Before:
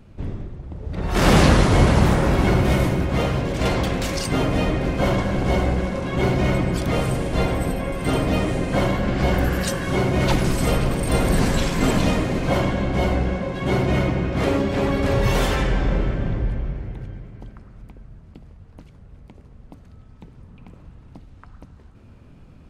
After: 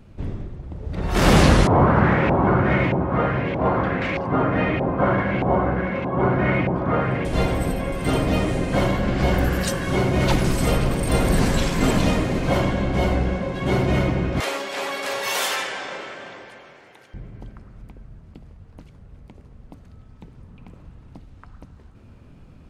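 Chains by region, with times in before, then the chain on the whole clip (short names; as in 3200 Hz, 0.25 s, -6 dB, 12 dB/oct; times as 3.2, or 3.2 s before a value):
1.67–7.25 HPF 92 Hz + LFO low-pass saw up 1.6 Hz 810–2600 Hz
14.4–17.14 HPF 700 Hz + high shelf 3200 Hz +8 dB
whole clip: dry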